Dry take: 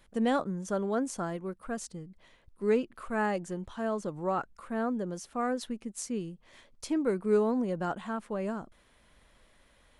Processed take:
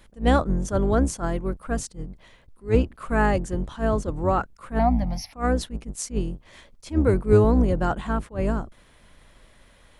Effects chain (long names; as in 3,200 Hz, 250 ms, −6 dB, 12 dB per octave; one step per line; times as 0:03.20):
sub-octave generator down 2 octaves, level +3 dB
0:04.79–0:05.33: drawn EQ curve 270 Hz 0 dB, 400 Hz −29 dB, 750 Hz +12 dB, 1,500 Hz −13 dB, 2,100 Hz +13 dB, 3,200 Hz −2 dB, 5,400 Hz +9 dB, 7,900 Hz −29 dB, 12,000 Hz +13 dB
level that may rise only so fast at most 260 dB per second
level +7.5 dB